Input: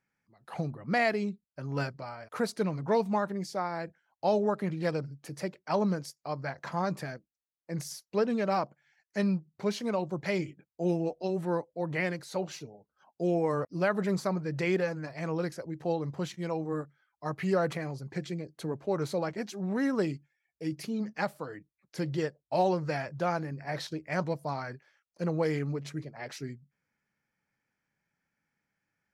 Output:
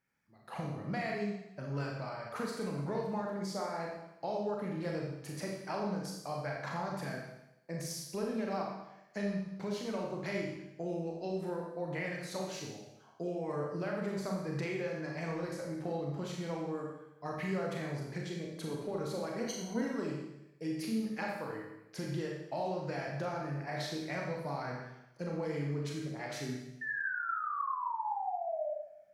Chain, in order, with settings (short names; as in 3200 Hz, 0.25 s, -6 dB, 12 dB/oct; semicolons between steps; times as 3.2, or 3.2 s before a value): 26.81–28.7 painted sound fall 580–1800 Hz -36 dBFS; compressor, threshold -34 dBFS, peak gain reduction 11.5 dB; 19.4–19.81 ripple EQ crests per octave 1.9, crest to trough 17 dB; Schroeder reverb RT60 0.91 s, combs from 28 ms, DRR -1.5 dB; gain -2.5 dB